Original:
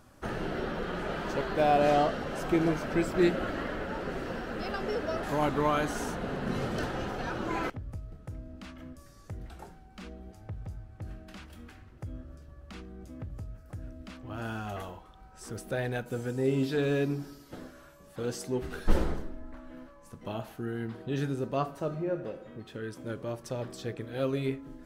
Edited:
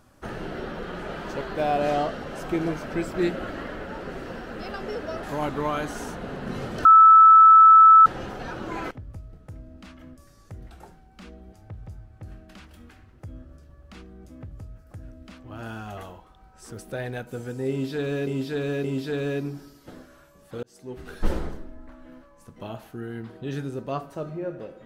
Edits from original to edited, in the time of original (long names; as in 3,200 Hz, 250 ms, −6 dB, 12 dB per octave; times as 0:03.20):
0:06.85: insert tone 1,310 Hz −8 dBFS 1.21 s
0:16.49–0:17.06: repeat, 3 plays
0:18.28–0:18.83: fade in